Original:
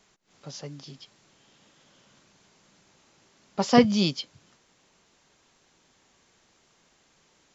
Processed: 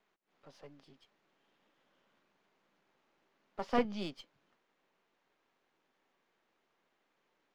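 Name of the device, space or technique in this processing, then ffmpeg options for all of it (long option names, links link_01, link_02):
crystal radio: -af "highpass=260,lowpass=2500,aeval=exprs='if(lt(val(0),0),0.447*val(0),val(0))':channel_layout=same,volume=-8.5dB"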